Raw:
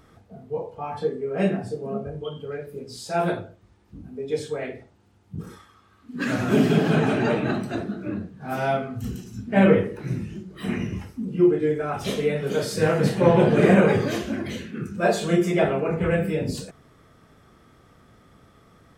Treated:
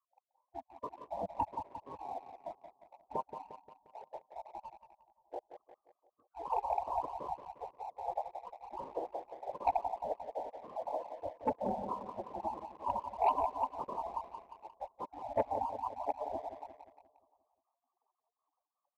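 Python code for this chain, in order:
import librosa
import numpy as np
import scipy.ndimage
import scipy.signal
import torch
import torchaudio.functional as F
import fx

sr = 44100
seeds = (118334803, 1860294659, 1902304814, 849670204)

p1 = fx.spec_dropout(x, sr, seeds[0], share_pct=66)
p2 = fx.rider(p1, sr, range_db=4, speed_s=0.5)
p3 = p1 + (p2 * 10.0 ** (-3.0 / 20.0))
p4 = fx.leveller(p3, sr, passes=1)
p5 = scipy.signal.sosfilt(scipy.signal.butter(16, 890.0, 'lowpass', fs=sr, output='sos'), p4)
p6 = fx.spec_gate(p5, sr, threshold_db=-30, keep='weak')
p7 = fx.highpass(p6, sr, hz=520.0, slope=6)
p8 = fx.echo_feedback(p7, sr, ms=176, feedback_pct=56, wet_db=-9)
p9 = fx.leveller(p8, sr, passes=1)
y = p9 * 10.0 ** (13.0 / 20.0)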